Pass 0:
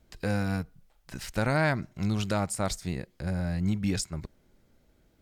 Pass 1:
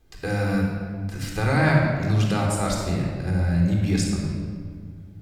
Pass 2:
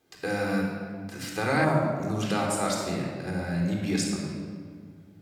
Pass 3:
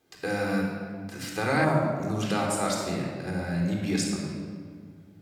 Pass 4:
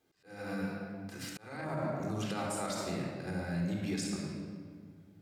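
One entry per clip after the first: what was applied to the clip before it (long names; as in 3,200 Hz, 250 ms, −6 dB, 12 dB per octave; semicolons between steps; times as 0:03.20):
mains-hum notches 60/120/180 Hz; rectangular room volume 2,800 cubic metres, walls mixed, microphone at 3.8 metres
gain on a spectral selection 0:01.64–0:02.22, 1,400–5,600 Hz −11 dB; high-pass filter 210 Hz 12 dB per octave; level −1 dB
no processing that can be heard
brickwall limiter −20 dBFS, peak gain reduction 9 dB; volume swells 432 ms; level −6 dB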